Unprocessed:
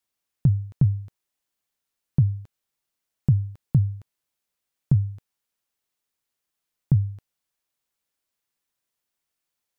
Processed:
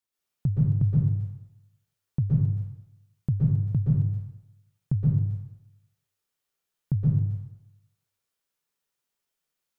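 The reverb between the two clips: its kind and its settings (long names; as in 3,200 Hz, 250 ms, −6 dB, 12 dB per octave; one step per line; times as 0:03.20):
dense smooth reverb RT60 0.87 s, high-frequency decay 0.75×, pre-delay 110 ms, DRR −6 dB
level −7 dB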